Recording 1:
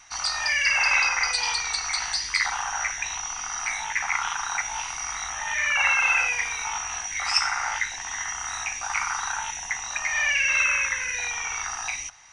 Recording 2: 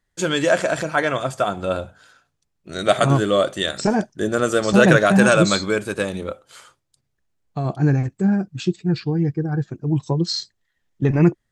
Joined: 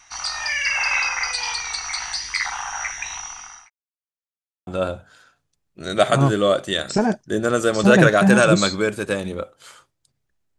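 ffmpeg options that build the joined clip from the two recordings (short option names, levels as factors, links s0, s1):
-filter_complex "[0:a]apad=whole_dur=10.58,atrim=end=10.58,asplit=2[s0][s1];[s0]atrim=end=3.7,asetpts=PTS-STARTPTS,afade=t=out:st=3.18:d=0.52[s2];[s1]atrim=start=3.7:end=4.67,asetpts=PTS-STARTPTS,volume=0[s3];[1:a]atrim=start=1.56:end=7.47,asetpts=PTS-STARTPTS,afade=t=in:d=0.004:c=hsin[s4];[s2][s3][s4]concat=n=3:v=0:a=1"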